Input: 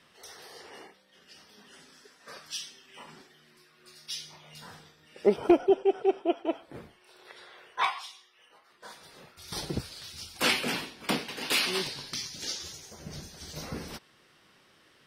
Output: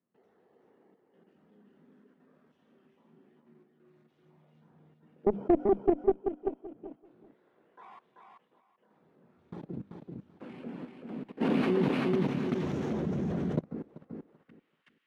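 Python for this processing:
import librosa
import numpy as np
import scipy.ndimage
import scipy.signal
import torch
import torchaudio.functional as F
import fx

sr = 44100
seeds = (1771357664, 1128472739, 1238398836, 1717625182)

y = scipy.signal.medfilt(x, 9)
y = fx.highpass(y, sr, hz=140.0, slope=6)
y = fx.hum_notches(y, sr, base_hz=50, count=6)
y = fx.level_steps(y, sr, step_db=21)
y = fx.filter_sweep_bandpass(y, sr, from_hz=210.0, to_hz=2500.0, start_s=13.7, end_s=14.67, q=1.5)
y = fx.cheby_harmonics(y, sr, harmonics=(2, 5), levels_db=(-9, -23), full_scale_db=-20.0)
y = fx.echo_feedback(y, sr, ms=386, feedback_pct=18, wet_db=-4)
y = fx.env_flatten(y, sr, amount_pct=70, at=(11.4, 13.59), fade=0.02)
y = y * librosa.db_to_amplitude(5.5)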